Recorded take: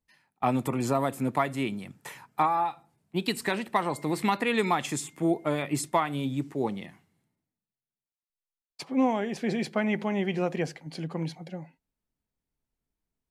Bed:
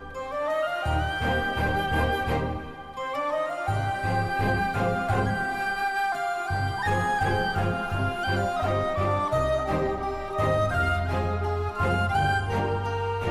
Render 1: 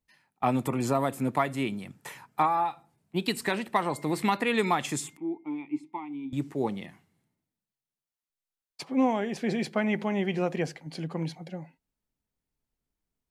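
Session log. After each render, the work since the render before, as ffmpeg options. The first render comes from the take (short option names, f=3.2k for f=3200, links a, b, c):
-filter_complex "[0:a]asettb=1/sr,asplit=3[a][b][c];[a]atrim=end=5.174[d];[b]atrim=start=5.17:end=6.33,asetpts=PTS-STARTPTS,afade=t=in:d=0.004:c=qsin,afade=t=out:st=1.156:d=0.004:c=qsin,asplit=3[e][f][g];[e]bandpass=f=300:t=q:w=8,volume=0dB[h];[f]bandpass=f=870:t=q:w=8,volume=-6dB[i];[g]bandpass=f=2.24k:t=q:w=8,volume=-9dB[j];[h][i][j]amix=inputs=3:normalize=0[k];[c]atrim=start=6.326[l];[d][k]acrossfade=d=0.004:c1=hsin:c2=qsin[m];[m][l]acrossfade=d=0.004:c1=qsin:c2=hsin"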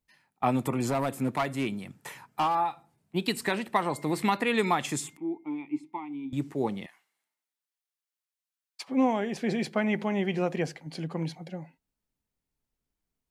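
-filter_complex "[0:a]asettb=1/sr,asplit=3[a][b][c];[a]atrim=end=0.884[d];[b]atrim=start=0.88:end=2.55,asetpts=PTS-STARTPTS,afade=t=in:d=0.004:c=qsin,afade=t=out:st=1.666:d=0.004:c=qsin,volume=22dB,asoftclip=hard,volume=-22dB[e];[c]atrim=start=2.546[f];[d][e]acrossfade=d=0.004:c1=hsin:c2=qsin[g];[g][f]acrossfade=d=0.004:c1=qsin:c2=hsin,asettb=1/sr,asplit=3[h][i][j];[h]atrim=end=6.864[k];[i]atrim=start=6.86:end=8.88,asetpts=PTS-STARTPTS,afade=t=in:d=0.004:c=qsin,afade=t=out:st=2.016:d=0.004:c=qsin,highpass=990[l];[j]atrim=start=8.876[m];[k][l]acrossfade=d=0.004:c1=hsin:c2=qsin[n];[n][m]acrossfade=d=0.004:c1=qsin:c2=hsin"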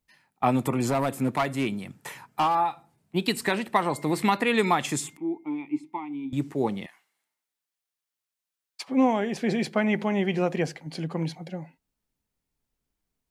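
-af "volume=3dB"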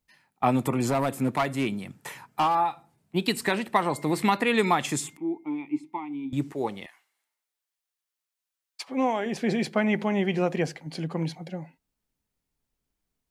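-filter_complex "[0:a]asettb=1/sr,asplit=3[a][b][c];[a]atrim=end=6.524[d];[b]atrim=start=6.52:end=9.26,asetpts=PTS-STARTPTS,afade=t=in:d=0.004:c=qsin,afade=t=out:st=2.736:d=0.004:c=qsin,equalizer=f=170:t=o:w=1.8:g=-9[e];[c]atrim=start=9.256[f];[d][e]acrossfade=d=0.004:c1=hsin:c2=qsin[g];[g][f]acrossfade=d=0.004:c1=qsin:c2=hsin"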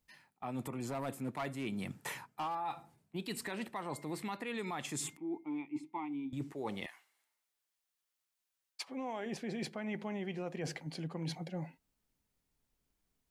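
-af "alimiter=limit=-20dB:level=0:latency=1:release=146,areverse,acompressor=threshold=-37dB:ratio=6,areverse"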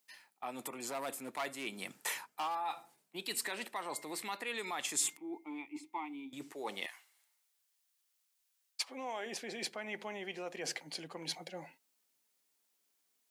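-af "highpass=380,highshelf=f=2.5k:g=8.5"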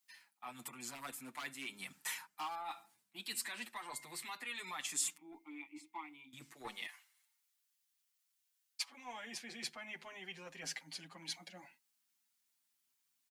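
-filter_complex "[0:a]acrossover=split=290|780|6800[a][b][c][d];[b]acrusher=bits=5:mix=0:aa=0.5[e];[a][e][c][d]amix=inputs=4:normalize=0,asplit=2[f][g];[g]adelay=6.8,afreqshift=0.35[h];[f][h]amix=inputs=2:normalize=1"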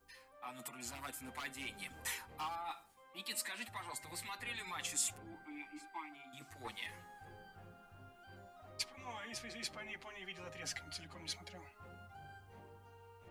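-filter_complex "[1:a]volume=-31.5dB[a];[0:a][a]amix=inputs=2:normalize=0"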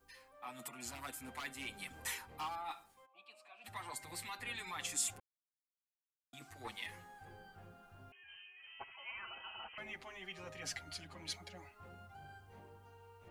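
-filter_complex "[0:a]asplit=3[a][b][c];[a]afade=t=out:st=3.05:d=0.02[d];[b]asplit=3[e][f][g];[e]bandpass=f=730:t=q:w=8,volume=0dB[h];[f]bandpass=f=1.09k:t=q:w=8,volume=-6dB[i];[g]bandpass=f=2.44k:t=q:w=8,volume=-9dB[j];[h][i][j]amix=inputs=3:normalize=0,afade=t=in:st=3.05:d=0.02,afade=t=out:st=3.64:d=0.02[k];[c]afade=t=in:st=3.64:d=0.02[l];[d][k][l]amix=inputs=3:normalize=0,asettb=1/sr,asplit=3[m][n][o];[m]atrim=end=8.124[p];[n]atrim=start=8.12:end=9.78,asetpts=PTS-STARTPTS,afade=t=in:d=0.004:c=qsin,afade=t=out:st=1.656:d=0.004:c=qsin,lowpass=f=2.7k:t=q:w=0.5098,lowpass=f=2.7k:t=q:w=0.6013,lowpass=f=2.7k:t=q:w=0.9,lowpass=f=2.7k:t=q:w=2.563,afreqshift=-3200[q];[o]atrim=start=9.776[r];[p][q]acrossfade=d=0.004:c1=hsin:c2=qsin[s];[s][r]acrossfade=d=0.004:c1=qsin:c2=hsin,asplit=3[t][u][v];[t]atrim=end=5.2,asetpts=PTS-STARTPTS,afade=t=out:st=5.196:d=0.004:c=hsin[w];[u]atrim=start=5.2:end=6.33,asetpts=PTS-STARTPTS,volume=0[x];[v]atrim=start=6.33,asetpts=PTS-STARTPTS,afade=t=in:d=0.004:c=hsin[y];[w][x][y]concat=n=3:v=0:a=1"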